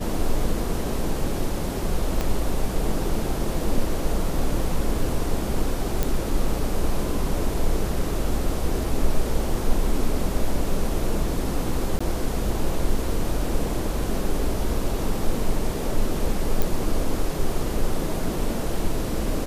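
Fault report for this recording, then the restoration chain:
2.21 s: pop -11 dBFS
6.03 s: pop
11.99–12.01 s: dropout 15 ms
16.62 s: pop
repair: de-click; interpolate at 11.99 s, 15 ms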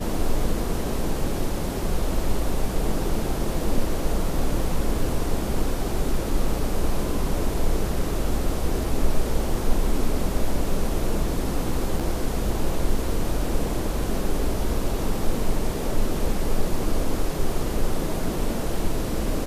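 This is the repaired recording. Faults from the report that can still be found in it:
2.21 s: pop

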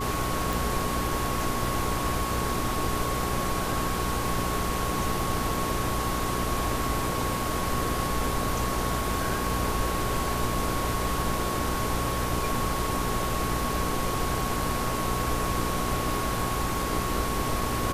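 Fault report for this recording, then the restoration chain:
crackle 24 per s -36 dBFS
hum 60 Hz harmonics 7 -33 dBFS
whine 1.1 kHz -32 dBFS
0.53 s: pop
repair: de-click; de-hum 60 Hz, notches 7; band-stop 1.1 kHz, Q 30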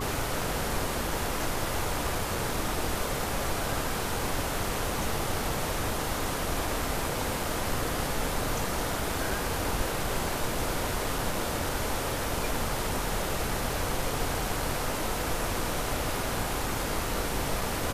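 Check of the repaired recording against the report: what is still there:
nothing left

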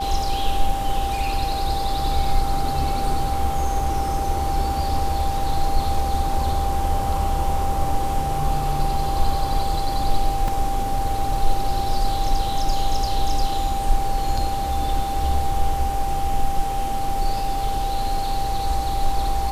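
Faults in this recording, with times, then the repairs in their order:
whine 790 Hz -24 dBFS
10.48 s: dropout 2.6 ms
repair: band-stop 790 Hz, Q 30; interpolate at 10.48 s, 2.6 ms

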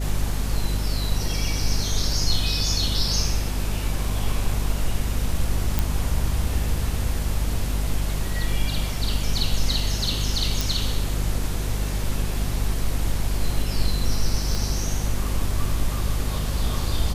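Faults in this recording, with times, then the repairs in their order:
hum 50 Hz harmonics 5 -26 dBFS
5.79 s: pop
10.61 s: pop
14.55 s: pop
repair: de-click; de-hum 50 Hz, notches 5

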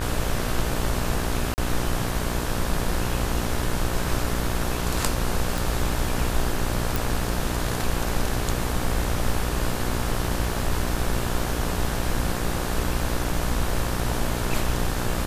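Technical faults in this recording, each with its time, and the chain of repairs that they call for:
buzz 60 Hz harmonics 30 -29 dBFS
1.54–1.58 s: dropout 39 ms
5.58 s: pop
6.96 s: pop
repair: de-click; de-hum 60 Hz, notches 30; interpolate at 1.54 s, 39 ms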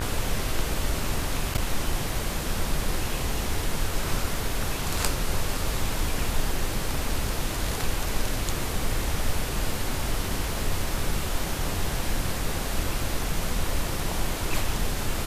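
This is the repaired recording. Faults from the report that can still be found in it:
nothing left

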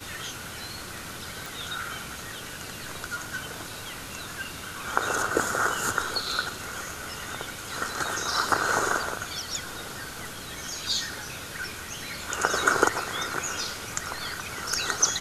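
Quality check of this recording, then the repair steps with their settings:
1.46 s: pop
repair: de-click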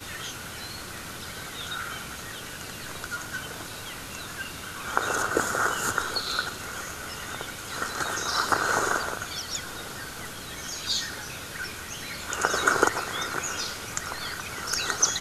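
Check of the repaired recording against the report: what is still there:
nothing left

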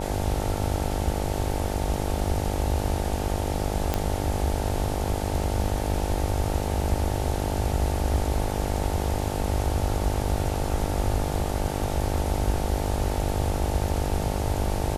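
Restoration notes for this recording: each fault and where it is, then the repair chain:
buzz 50 Hz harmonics 18 -30 dBFS
3.94 s: pop -9 dBFS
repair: de-click; de-hum 50 Hz, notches 18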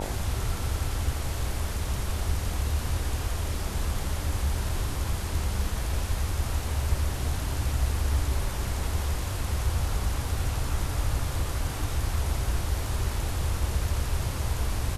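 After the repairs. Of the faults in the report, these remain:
nothing left

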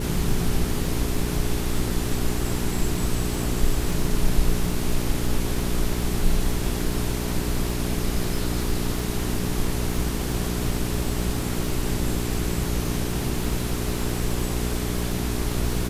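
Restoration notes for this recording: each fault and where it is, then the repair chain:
crackle 37 per s -29 dBFS
hum 60 Hz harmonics 7 -28 dBFS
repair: de-click; de-hum 60 Hz, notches 7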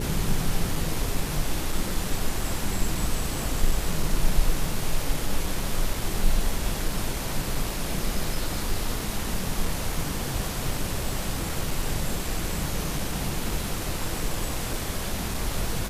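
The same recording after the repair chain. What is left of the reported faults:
nothing left

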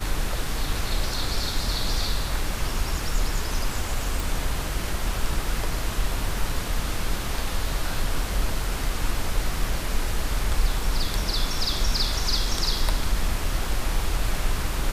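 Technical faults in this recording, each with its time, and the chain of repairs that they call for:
4.20 s: pop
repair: de-click

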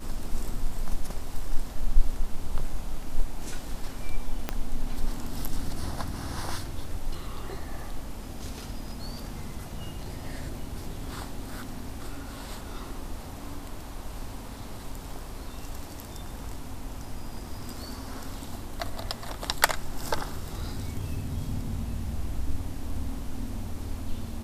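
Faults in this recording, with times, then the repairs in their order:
4.49 s: pop -13 dBFS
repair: de-click

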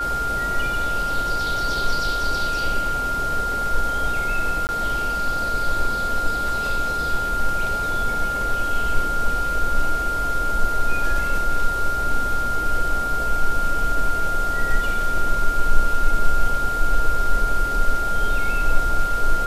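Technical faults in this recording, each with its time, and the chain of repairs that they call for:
whine 1.4 kHz -22 dBFS
4.67–4.69 s: dropout 19 ms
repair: band-stop 1.4 kHz, Q 30; interpolate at 4.67 s, 19 ms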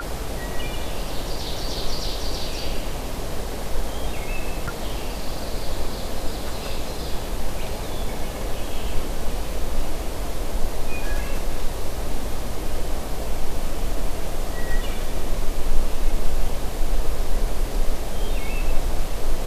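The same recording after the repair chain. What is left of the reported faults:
nothing left

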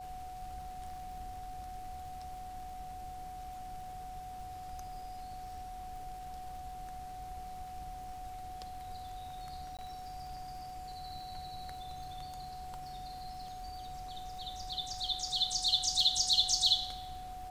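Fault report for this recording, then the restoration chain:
crackle 55 per s -48 dBFS
whine 740 Hz -43 dBFS
9.77–9.79 s: dropout 17 ms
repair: de-click; band-stop 740 Hz, Q 30; interpolate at 9.77 s, 17 ms

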